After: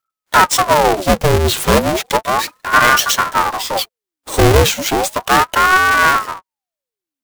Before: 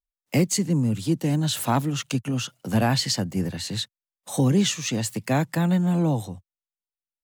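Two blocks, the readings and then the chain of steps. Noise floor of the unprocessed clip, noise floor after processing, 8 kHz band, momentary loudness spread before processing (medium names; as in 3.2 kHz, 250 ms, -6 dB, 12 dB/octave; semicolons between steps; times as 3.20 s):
under -85 dBFS, under -85 dBFS, +9.5 dB, 8 LU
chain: square wave that keeps the level; short-mantissa float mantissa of 2-bit; ring modulator with a swept carrier 780 Hz, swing 70%, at 0.34 Hz; trim +9 dB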